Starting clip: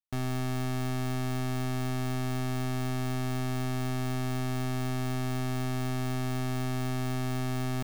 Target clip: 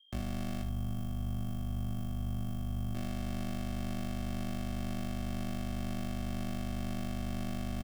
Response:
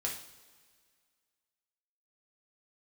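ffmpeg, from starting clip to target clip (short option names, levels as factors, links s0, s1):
-filter_complex "[0:a]afreqshift=-40,alimiter=level_in=1.78:limit=0.0631:level=0:latency=1:release=27,volume=0.562,asettb=1/sr,asplit=3[s0][s1][s2];[s0]atrim=end=0.624[s3];[s1]atrim=start=0.62:end=2.95,asetpts=PTS-STARTPTS,afade=t=in:d=0.004:c=qsin,afade=t=out:st=2.326:d=0.004:c=qsin,equalizer=f=125:t=o:w=1:g=10,equalizer=f=250:t=o:w=1:g=-5,equalizer=f=500:t=o:w=1:g=-9,equalizer=f=2000:t=o:w=1:g=-11,equalizer=f=4000:t=o:w=1:g=-11,equalizer=f=8000:t=o:w=1:g=-4[s4];[s2]atrim=start=2.946[s5];[s3][s4]acrossfade=d=0.004:c1=hsin:c2=qsin[s6];[s6][s5]acrossfade=d=0.004:c1=qsin:c2=hsin,aeval=exprs='val(0)+0.00126*sin(2*PI*3200*n/s)':c=same,lowshelf=f=70:g=9,bandreject=f=990:w=7.3,aeval=exprs='val(0)*sin(2*PI*25*n/s)':c=same,aecho=1:1:21|74:0.562|0.398"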